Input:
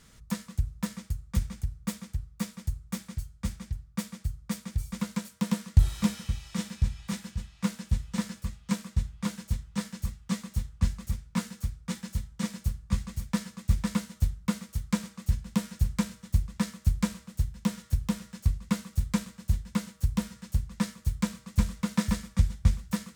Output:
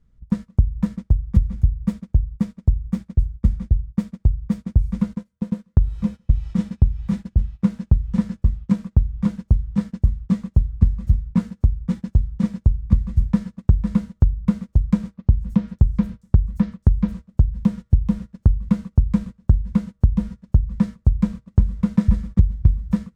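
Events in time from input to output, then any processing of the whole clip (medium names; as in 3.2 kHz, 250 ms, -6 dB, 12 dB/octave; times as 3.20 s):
5.13–6.30 s: feedback comb 510 Hz, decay 0.22 s
15.14–17.12 s: bands offset in time lows, highs 230 ms, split 5.6 kHz
whole clip: tilt EQ -4.5 dB/octave; gate -28 dBFS, range -18 dB; compression 12:1, threshold -11 dBFS; trim +1 dB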